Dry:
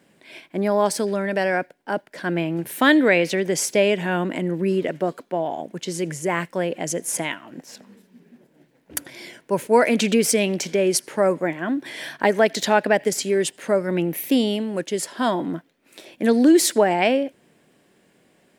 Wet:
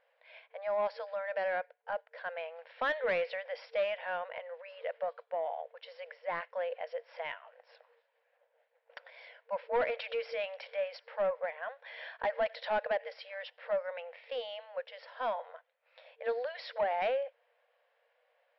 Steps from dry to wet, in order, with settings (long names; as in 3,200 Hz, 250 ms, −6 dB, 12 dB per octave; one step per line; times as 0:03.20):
brick-wall band-pass 460–5,600 Hz
soft clipping −15.5 dBFS, distortion −13 dB
high-frequency loss of the air 350 metres
level −7.5 dB